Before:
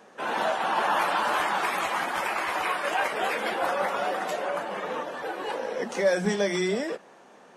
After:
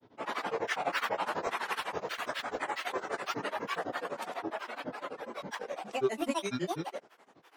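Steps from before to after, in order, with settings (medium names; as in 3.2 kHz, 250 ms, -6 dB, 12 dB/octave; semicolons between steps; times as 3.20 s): granulator, grains 12 per s, pitch spread up and down by 12 st; trim -5 dB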